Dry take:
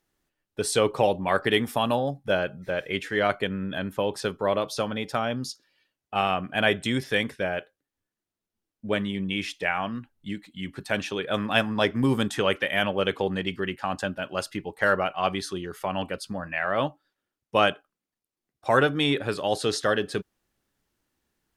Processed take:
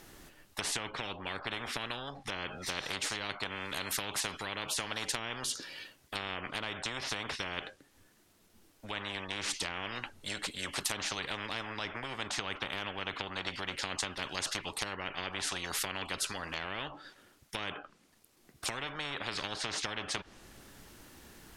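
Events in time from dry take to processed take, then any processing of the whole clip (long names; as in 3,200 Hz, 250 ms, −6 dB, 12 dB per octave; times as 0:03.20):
0:02.66–0:05.08: spectral tilt +2 dB per octave
whole clip: treble cut that deepens with the level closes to 1,800 Hz, closed at −22 dBFS; downward compressor, threshold −28 dBFS; every bin compressed towards the loudest bin 10 to 1; level −2 dB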